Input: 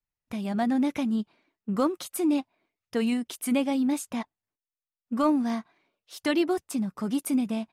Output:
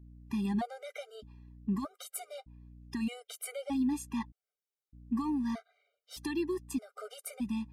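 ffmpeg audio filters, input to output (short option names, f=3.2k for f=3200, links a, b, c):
-af "alimiter=limit=-23.5dB:level=0:latency=1:release=491,aeval=exprs='val(0)+0.00282*(sin(2*PI*60*n/s)+sin(2*PI*2*60*n/s)/2+sin(2*PI*3*60*n/s)/3+sin(2*PI*4*60*n/s)/4+sin(2*PI*5*60*n/s)/5)':c=same,afftfilt=real='re*gt(sin(2*PI*0.81*pts/sr)*(1-2*mod(floor(b*sr/1024/400),2)),0)':imag='im*gt(sin(2*PI*0.81*pts/sr)*(1-2*mod(floor(b*sr/1024/400),2)),0)':win_size=1024:overlap=0.75"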